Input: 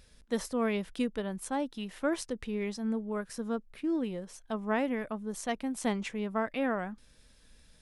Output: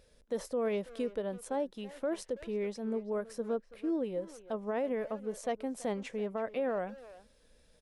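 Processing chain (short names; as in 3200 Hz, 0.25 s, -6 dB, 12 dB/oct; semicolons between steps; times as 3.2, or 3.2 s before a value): bell 520 Hz +12.5 dB 0.98 oct; limiter -19 dBFS, peak gain reduction 7.5 dB; speakerphone echo 0.33 s, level -14 dB; gain -6.5 dB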